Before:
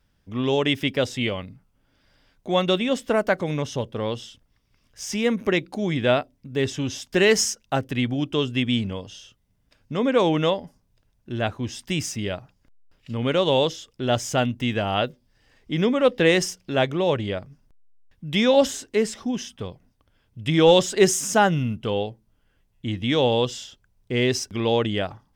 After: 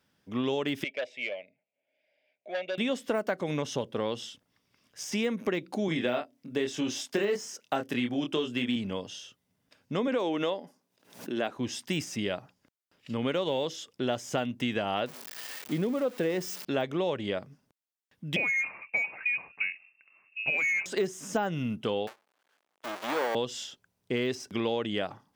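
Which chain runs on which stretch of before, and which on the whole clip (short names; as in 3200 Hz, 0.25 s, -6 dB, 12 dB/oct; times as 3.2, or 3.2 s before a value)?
0.84–2.78 double band-pass 1200 Hz, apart 1.9 oct + core saturation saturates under 1500 Hz
5.88–8.76 HPF 160 Hz + doubler 25 ms -4.5 dB
10.07–11.56 Chebyshev high-pass 270 Hz + backwards sustainer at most 120 dB/s
15.06–16.65 switching spikes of -16.5 dBFS + high shelf 8200 Hz -6 dB
18.36–20.86 bell 520 Hz +6 dB 1.1 oct + inverted band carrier 2700 Hz
22.07–23.35 half-waves squared off + HPF 740 Hz + high shelf 5600 Hz -7.5 dB
whole clip: de-esser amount 75%; HPF 180 Hz 12 dB/oct; compressor 6:1, threshold -26 dBFS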